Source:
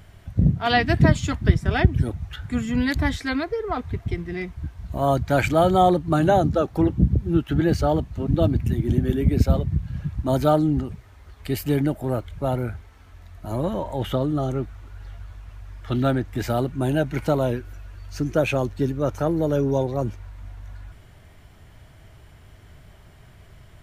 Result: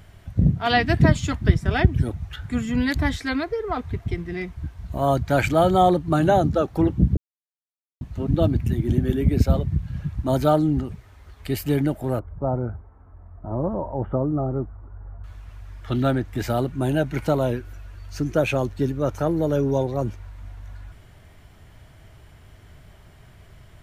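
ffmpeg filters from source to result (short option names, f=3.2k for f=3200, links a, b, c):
-filter_complex "[0:a]asettb=1/sr,asplit=3[a][b][c];[a]atrim=end=12.194[d];[b]atrim=start=12.19:end=15.24,asetpts=PTS-STARTPTS,afade=t=in:d=0.004:c=qsin,afade=t=out:st=3.046:d=0.004:c=qsin,lowpass=f=1.2k:w=0.5412,lowpass=f=1.2k:w=1.3066[e];[c]atrim=start=15.236[f];[d][e]acrossfade=d=0.004:c1=hsin:c2=qsin[g];[g][f]acrossfade=d=0.004:c1=qsin:c2=hsin,asplit=3[h][i][j];[h]atrim=end=7.17,asetpts=PTS-STARTPTS,afade=t=out:st=7.166:d=0.004:c=hsin[k];[i]atrim=start=7.17:end=8.01,asetpts=PTS-STARTPTS,volume=0[l];[j]atrim=start=8.01,asetpts=PTS-STARTPTS,afade=t=in:d=0.004:c=hsin[m];[k][l][m]concat=n=3:v=0:a=1"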